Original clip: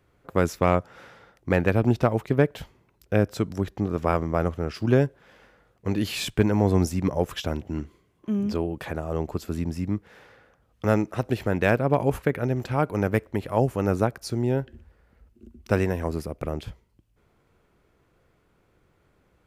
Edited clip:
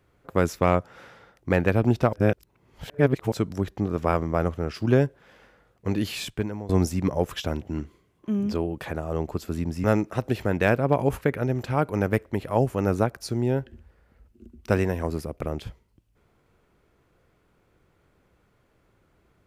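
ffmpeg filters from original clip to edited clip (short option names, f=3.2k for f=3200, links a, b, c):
-filter_complex "[0:a]asplit=5[a][b][c][d][e];[a]atrim=end=2.132[f];[b]atrim=start=2.128:end=3.322,asetpts=PTS-STARTPTS,areverse[g];[c]atrim=start=3.318:end=6.69,asetpts=PTS-STARTPTS,afade=t=out:st=2.642:d=0.73:silence=0.1[h];[d]atrim=start=6.69:end=9.842,asetpts=PTS-STARTPTS,afade=t=in:d=0.004:c=hsin:silence=0.1[i];[e]atrim=start=10.848[j];[f][g]acrossfade=d=0.004:c1=hsin:c2=hsin[k];[h][i]concat=n=2:v=0:a=1[l];[k][l]acrossfade=d=0.004:c1=hsin:c2=hsin[m];[m][j]acrossfade=d=0.004:c1=hsin:c2=hsin"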